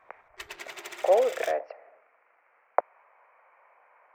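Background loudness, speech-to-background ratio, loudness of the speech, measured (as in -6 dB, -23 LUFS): -41.5 LUFS, 14.0 dB, -27.5 LUFS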